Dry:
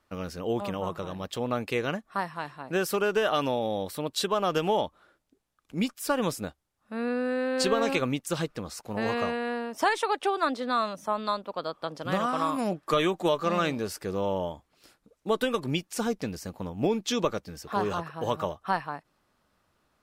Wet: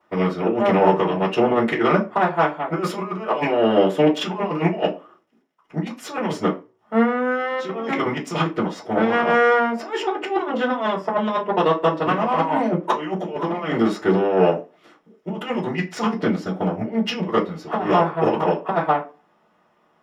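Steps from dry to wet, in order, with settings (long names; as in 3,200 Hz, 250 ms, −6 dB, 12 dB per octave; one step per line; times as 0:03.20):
compressor whose output falls as the input rises −30 dBFS, ratio −0.5
formants moved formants −3 semitones
bit-depth reduction 12 bits, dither none
harmonic generator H 7 −22 dB, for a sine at −15 dBFS
convolution reverb RT60 0.30 s, pre-delay 3 ms, DRR −11 dB
level −1 dB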